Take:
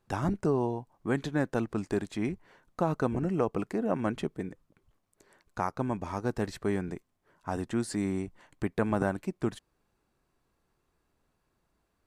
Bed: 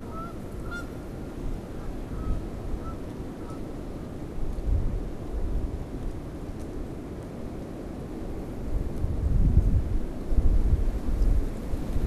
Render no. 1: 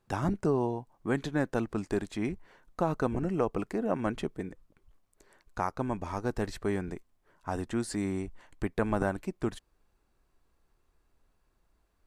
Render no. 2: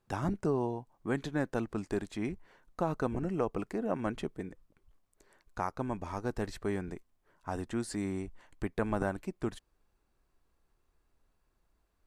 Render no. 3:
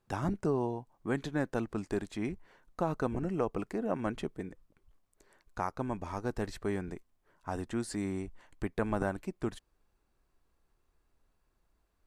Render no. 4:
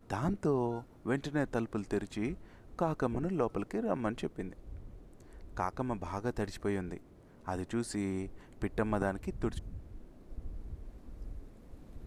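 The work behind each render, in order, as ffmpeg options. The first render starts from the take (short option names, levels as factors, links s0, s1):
-af "asubboost=boost=3.5:cutoff=62"
-af "volume=0.708"
-af anull
-filter_complex "[1:a]volume=0.0891[s0];[0:a][s0]amix=inputs=2:normalize=0"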